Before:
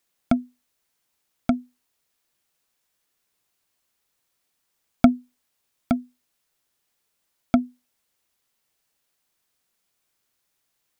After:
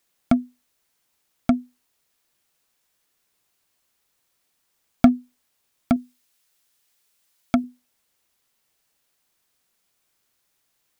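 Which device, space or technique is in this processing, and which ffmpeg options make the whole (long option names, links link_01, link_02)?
parallel distortion: -filter_complex "[0:a]asettb=1/sr,asplit=3[link_01][link_02][link_03];[link_01]atrim=end=5.964[link_04];[link_02]atrim=start=5.96:end=7.64,asetpts=PTS-STARTPTS,afade=type=in:duration=0.004:curve=qsin,afade=type=out:start_time=1.676:duration=0.004:curve=qsin,tiltshelf=frequency=1500:gain=-4[link_05];[link_03]atrim=start=7.636[link_06];[link_04][link_05]acrossfade=duration=0.004:curve1=hsin:curve2=qsin[link_07];[link_07][link_06]acrossfade=duration=0.004:curve1=qsin:curve2=hsin,asplit=2[link_08][link_09];[link_09]asoftclip=type=hard:threshold=-16dB,volume=-4dB[link_10];[link_08][link_10]amix=inputs=2:normalize=0,volume=-1dB"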